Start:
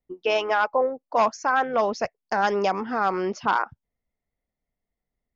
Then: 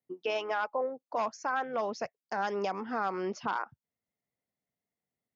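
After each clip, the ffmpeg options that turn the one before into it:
-af "highpass=f=100:w=0.5412,highpass=f=100:w=1.3066,alimiter=limit=0.133:level=0:latency=1:release=491,volume=0.631"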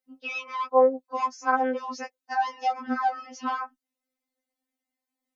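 -af "afftfilt=real='re*3.46*eq(mod(b,12),0)':imag='im*3.46*eq(mod(b,12),0)':win_size=2048:overlap=0.75,volume=2"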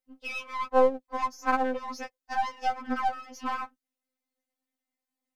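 -af "aeval=exprs='if(lt(val(0),0),0.447*val(0),val(0))':c=same"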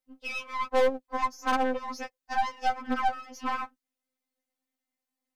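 -af "aeval=exprs='0.376*(cos(1*acos(clip(val(0)/0.376,-1,1)))-cos(1*PI/2))+0.0266*(cos(6*acos(clip(val(0)/0.376,-1,1)))-cos(6*PI/2))':c=same,asoftclip=type=hard:threshold=0.15"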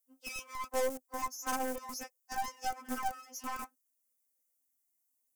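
-filter_complex "[0:a]acrossover=split=210|500|1500[s0][s1][s2][s3];[s0]acrusher=bits=6:mix=0:aa=0.000001[s4];[s4][s1][s2][s3]amix=inputs=4:normalize=0,aexciter=amount=8.3:drive=4.6:freq=5700,volume=0.355"

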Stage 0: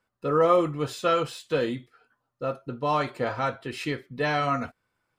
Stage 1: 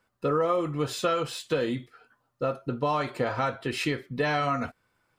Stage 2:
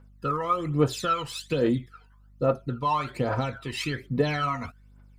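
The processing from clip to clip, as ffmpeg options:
-af "acompressor=threshold=0.0355:ratio=4,volume=1.78"
-af "aeval=exprs='val(0)+0.00112*(sin(2*PI*50*n/s)+sin(2*PI*2*50*n/s)/2+sin(2*PI*3*50*n/s)/3+sin(2*PI*4*50*n/s)/4+sin(2*PI*5*50*n/s)/5)':c=same,aphaser=in_gain=1:out_gain=1:delay=1.1:decay=0.71:speed=1.2:type=triangular,volume=0.708"

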